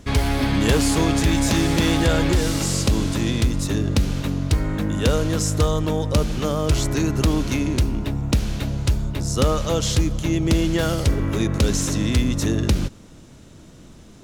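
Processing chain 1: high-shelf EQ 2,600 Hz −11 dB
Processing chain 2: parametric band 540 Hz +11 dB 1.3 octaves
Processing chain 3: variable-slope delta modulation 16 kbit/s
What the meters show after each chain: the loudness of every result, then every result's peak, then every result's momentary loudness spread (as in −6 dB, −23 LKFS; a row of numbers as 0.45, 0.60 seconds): −22.0, −17.5, −23.0 LKFS; −10.0, −1.5, −10.0 dBFS; 4, 7, 4 LU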